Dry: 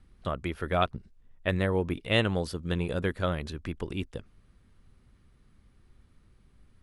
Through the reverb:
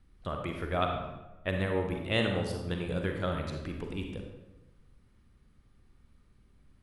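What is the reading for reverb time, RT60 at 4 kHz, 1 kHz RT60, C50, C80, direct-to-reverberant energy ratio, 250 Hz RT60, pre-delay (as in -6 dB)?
1.0 s, 0.70 s, 0.95 s, 3.5 dB, 6.0 dB, 2.5 dB, 1.3 s, 38 ms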